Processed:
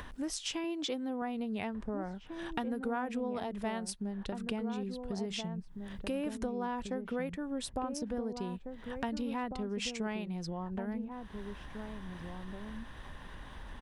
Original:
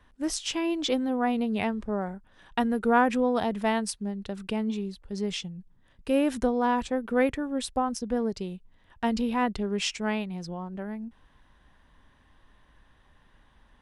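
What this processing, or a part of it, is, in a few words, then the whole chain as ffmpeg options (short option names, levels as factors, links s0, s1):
upward and downward compression: -filter_complex "[0:a]acompressor=mode=upward:threshold=0.0355:ratio=2.5,acompressor=threshold=0.0282:ratio=4,asettb=1/sr,asplit=3[s0][s1][s2];[s0]atrim=end=0.644[s3];[s1]atrim=start=0.64:end=1.22,asetpts=PTS-STARTPTS,afade=t=in:d=0.004:c=qsin,afade=t=out:st=0.576:d=0.004:c=qsin,highpass=93[s4];[s2]atrim=start=1.216[s5];[s3][s4]acrossfade=d=0.004:c1=hsin:c2=qsin[s6];[s6][s5]acrossfade=d=0.004:c1=qsin:c2=hsin,asplit=2[s7][s8];[s8]adelay=1749,volume=0.501,highshelf=f=4000:g=-39.4[s9];[s7][s9]amix=inputs=2:normalize=0,volume=0.708"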